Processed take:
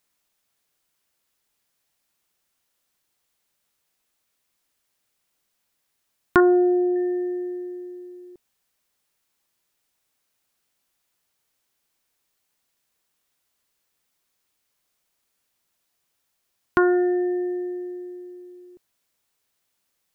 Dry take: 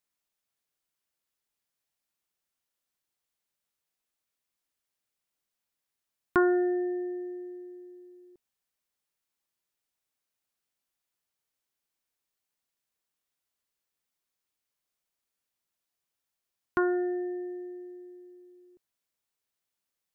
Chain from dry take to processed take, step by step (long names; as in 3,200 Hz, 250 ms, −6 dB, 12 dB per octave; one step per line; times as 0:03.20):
in parallel at −2 dB: downward compressor, threshold −34 dBFS, peak gain reduction 14 dB
0:06.40–0:06.96: on the sum: Savitzky-Golay smoothing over 65 samples
level +6 dB